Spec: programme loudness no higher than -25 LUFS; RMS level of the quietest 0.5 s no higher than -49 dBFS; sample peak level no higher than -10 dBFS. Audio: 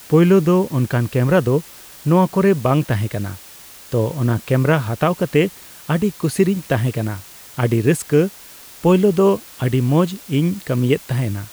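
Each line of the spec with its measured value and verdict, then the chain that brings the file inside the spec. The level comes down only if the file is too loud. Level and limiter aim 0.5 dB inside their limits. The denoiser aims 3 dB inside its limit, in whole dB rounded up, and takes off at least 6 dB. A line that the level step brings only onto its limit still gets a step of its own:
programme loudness -18.0 LUFS: fail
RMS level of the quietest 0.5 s -41 dBFS: fail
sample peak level -4.0 dBFS: fail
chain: denoiser 6 dB, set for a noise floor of -41 dBFS; gain -7.5 dB

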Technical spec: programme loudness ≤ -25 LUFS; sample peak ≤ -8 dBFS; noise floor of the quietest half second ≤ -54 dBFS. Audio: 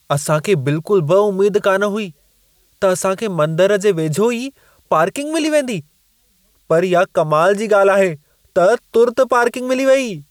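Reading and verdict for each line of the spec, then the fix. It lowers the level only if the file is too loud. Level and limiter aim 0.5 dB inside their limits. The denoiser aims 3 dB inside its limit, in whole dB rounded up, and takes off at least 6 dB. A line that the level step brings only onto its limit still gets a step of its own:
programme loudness -16.0 LUFS: fail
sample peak -4.0 dBFS: fail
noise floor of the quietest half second -59 dBFS: OK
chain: gain -9.5 dB

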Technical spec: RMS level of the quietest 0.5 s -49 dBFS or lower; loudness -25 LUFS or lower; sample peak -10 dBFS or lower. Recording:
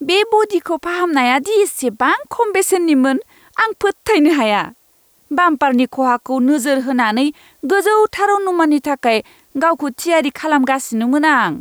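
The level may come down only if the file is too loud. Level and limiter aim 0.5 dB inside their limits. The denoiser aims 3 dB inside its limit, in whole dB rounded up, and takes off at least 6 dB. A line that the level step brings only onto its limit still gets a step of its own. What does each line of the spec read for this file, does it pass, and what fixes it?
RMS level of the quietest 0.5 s -55 dBFS: OK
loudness -15.5 LUFS: fail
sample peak -4.0 dBFS: fail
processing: gain -10 dB

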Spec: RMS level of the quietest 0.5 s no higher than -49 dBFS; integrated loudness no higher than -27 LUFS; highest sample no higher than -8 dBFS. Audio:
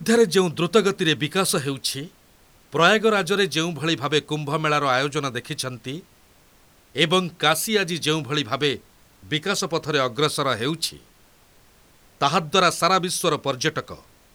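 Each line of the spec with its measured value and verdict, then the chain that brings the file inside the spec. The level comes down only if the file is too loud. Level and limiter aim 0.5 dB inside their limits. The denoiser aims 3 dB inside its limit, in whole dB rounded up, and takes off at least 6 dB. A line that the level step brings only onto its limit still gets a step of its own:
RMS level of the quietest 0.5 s -55 dBFS: OK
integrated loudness -21.5 LUFS: fail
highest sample -3.5 dBFS: fail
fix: gain -6 dB

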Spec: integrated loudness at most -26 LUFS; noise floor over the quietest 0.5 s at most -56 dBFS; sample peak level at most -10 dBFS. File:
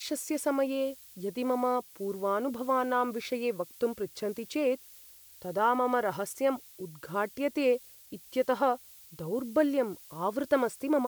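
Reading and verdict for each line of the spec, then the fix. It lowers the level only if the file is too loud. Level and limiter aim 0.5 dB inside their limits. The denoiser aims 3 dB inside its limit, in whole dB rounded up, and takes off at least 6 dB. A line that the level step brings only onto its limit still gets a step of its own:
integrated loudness -31.0 LUFS: OK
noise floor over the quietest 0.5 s -53 dBFS: fail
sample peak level -13.5 dBFS: OK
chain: denoiser 6 dB, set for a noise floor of -53 dBFS

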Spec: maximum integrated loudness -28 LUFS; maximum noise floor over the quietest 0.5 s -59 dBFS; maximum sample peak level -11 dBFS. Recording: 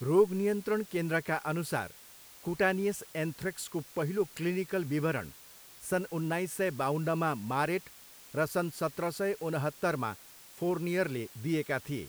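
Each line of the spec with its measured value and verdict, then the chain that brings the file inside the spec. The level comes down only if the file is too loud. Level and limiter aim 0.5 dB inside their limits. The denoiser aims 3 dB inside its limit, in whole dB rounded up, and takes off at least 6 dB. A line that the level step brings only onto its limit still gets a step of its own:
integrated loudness -32.5 LUFS: OK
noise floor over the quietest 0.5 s -53 dBFS: fail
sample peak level -13.5 dBFS: OK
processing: denoiser 9 dB, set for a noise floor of -53 dBFS

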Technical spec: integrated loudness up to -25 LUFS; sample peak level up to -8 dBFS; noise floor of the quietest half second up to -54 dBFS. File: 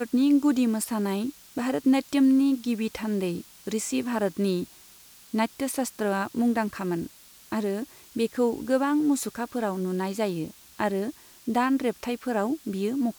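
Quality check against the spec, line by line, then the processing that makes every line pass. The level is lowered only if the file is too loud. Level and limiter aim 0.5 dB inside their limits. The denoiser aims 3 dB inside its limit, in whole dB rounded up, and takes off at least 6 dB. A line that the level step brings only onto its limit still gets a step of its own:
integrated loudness -27.0 LUFS: OK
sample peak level -11.5 dBFS: OK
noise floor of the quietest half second -52 dBFS: fail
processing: denoiser 6 dB, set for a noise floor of -52 dBFS

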